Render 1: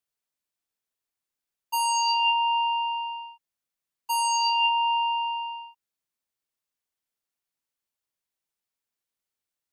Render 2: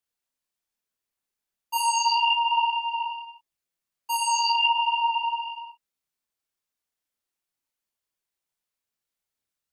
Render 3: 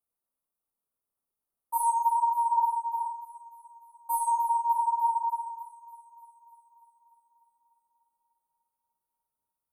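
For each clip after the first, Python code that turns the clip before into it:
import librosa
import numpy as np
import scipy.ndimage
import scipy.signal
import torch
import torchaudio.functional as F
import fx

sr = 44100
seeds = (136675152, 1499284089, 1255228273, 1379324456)

y1 = fx.chorus_voices(x, sr, voices=4, hz=1.1, base_ms=28, depth_ms=3.0, mix_pct=45)
y1 = y1 * 10.0 ** (4.0 / 20.0)
y2 = scipy.signal.sosfilt(scipy.signal.cheby1(4, 1.0, [1300.0, 9100.0], 'bandstop', fs=sr, output='sos'), y1)
y2 = fx.echo_wet_highpass(y2, sr, ms=297, feedback_pct=66, hz=1500.0, wet_db=-14.0)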